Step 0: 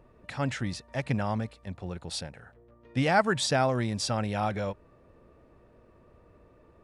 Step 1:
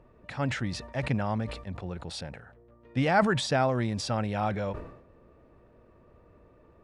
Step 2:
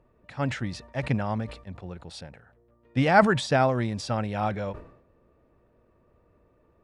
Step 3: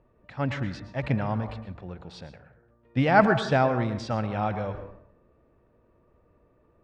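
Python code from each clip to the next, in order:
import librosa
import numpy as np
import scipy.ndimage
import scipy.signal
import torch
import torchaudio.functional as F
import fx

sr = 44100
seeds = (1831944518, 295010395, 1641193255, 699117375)

y1 = fx.lowpass(x, sr, hz=3600.0, slope=6)
y1 = fx.sustainer(y1, sr, db_per_s=76.0)
y2 = fx.upward_expand(y1, sr, threshold_db=-42.0, expansion=1.5)
y2 = y2 * librosa.db_to_amplitude(6.0)
y3 = fx.air_absorb(y2, sr, metres=120.0)
y3 = fx.rev_plate(y3, sr, seeds[0], rt60_s=0.59, hf_ratio=0.4, predelay_ms=100, drr_db=10.0)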